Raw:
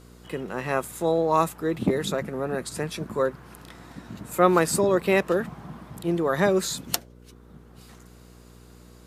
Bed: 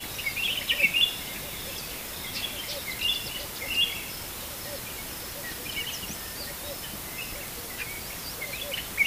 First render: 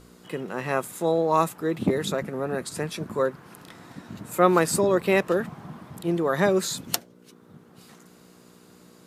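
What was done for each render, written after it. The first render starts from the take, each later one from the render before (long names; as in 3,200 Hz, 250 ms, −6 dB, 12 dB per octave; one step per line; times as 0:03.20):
hum removal 60 Hz, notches 2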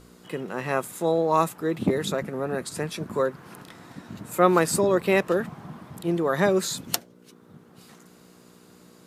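0:03.13–0:03.63: multiband upward and downward compressor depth 40%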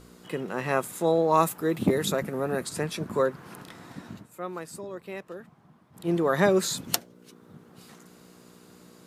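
0:01.43–0:02.66: high-shelf EQ 11,000 Hz +11.5 dB
0:04.07–0:06.13: duck −17 dB, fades 0.21 s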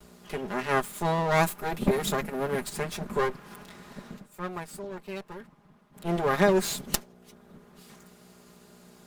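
lower of the sound and its delayed copy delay 4.9 ms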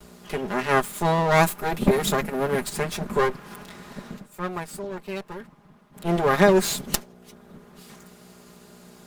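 level +5 dB
brickwall limiter −2 dBFS, peak gain reduction 2.5 dB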